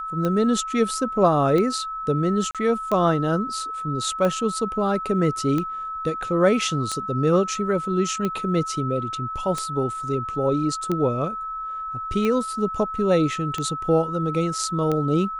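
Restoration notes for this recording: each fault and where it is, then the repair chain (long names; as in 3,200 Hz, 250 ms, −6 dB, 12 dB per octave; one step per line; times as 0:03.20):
scratch tick 45 rpm −13 dBFS
whistle 1,300 Hz −28 dBFS
0:02.51–0:02.55: drop-out 37 ms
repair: click removal
notch filter 1,300 Hz, Q 30
repair the gap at 0:02.51, 37 ms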